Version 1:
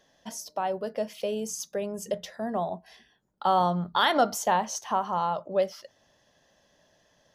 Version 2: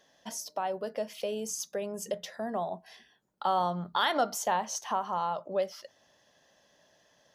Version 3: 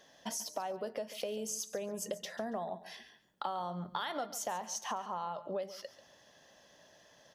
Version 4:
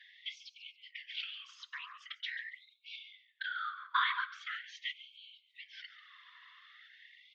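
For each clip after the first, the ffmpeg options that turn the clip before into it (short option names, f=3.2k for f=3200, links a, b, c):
-filter_complex "[0:a]lowshelf=f=390:g=-3.5,asplit=2[a][b];[b]acompressor=threshold=-33dB:ratio=6,volume=1dB[c];[a][c]amix=inputs=2:normalize=0,lowshelf=f=60:g=-11.5,volume=-6dB"
-af "acompressor=threshold=-39dB:ratio=6,aecho=1:1:140|280:0.178|0.0391,volume=3.5dB"
-af "highpass=f=230:t=q:w=0.5412,highpass=f=230:t=q:w=1.307,lowpass=f=3.4k:t=q:w=0.5176,lowpass=f=3.4k:t=q:w=0.7071,lowpass=f=3.4k:t=q:w=1.932,afreqshift=150,afftfilt=real='hypot(re,im)*cos(2*PI*random(0))':imag='hypot(re,im)*sin(2*PI*random(1))':win_size=512:overlap=0.75,afftfilt=real='re*gte(b*sr/1024,960*pow(2200/960,0.5+0.5*sin(2*PI*0.43*pts/sr)))':imag='im*gte(b*sr/1024,960*pow(2200/960,0.5+0.5*sin(2*PI*0.43*pts/sr)))':win_size=1024:overlap=0.75,volume=15dB"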